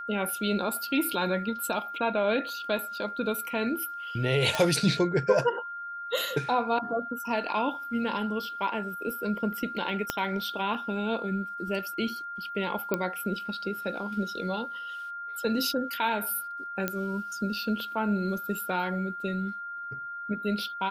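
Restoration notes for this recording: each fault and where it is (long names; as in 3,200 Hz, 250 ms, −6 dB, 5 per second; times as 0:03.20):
whistle 1,400 Hz −35 dBFS
0:04.55: click
0:10.10: click −11 dBFS
0:12.94: click −13 dBFS
0:16.88: click −13 dBFS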